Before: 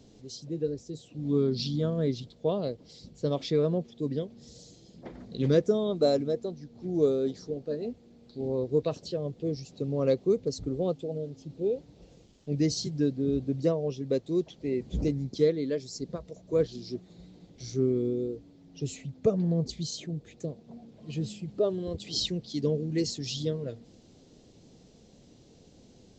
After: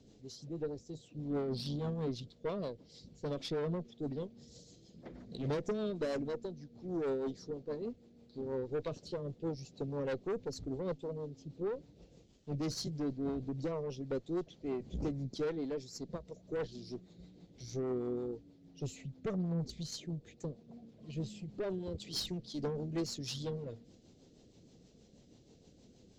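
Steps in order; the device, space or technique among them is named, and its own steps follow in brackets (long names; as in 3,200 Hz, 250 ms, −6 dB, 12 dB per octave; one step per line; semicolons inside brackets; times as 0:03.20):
overdriven rotary cabinet (tube saturation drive 27 dB, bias 0.4; rotating-speaker cabinet horn 6.3 Hz)
level −2.5 dB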